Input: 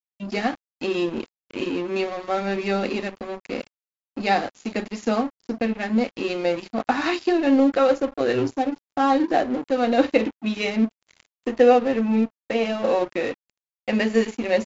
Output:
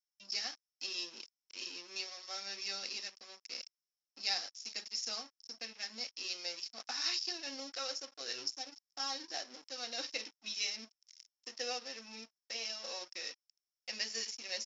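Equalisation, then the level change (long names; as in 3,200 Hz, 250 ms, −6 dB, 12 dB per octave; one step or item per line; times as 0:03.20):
resonant band-pass 5,400 Hz, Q 14
+15.0 dB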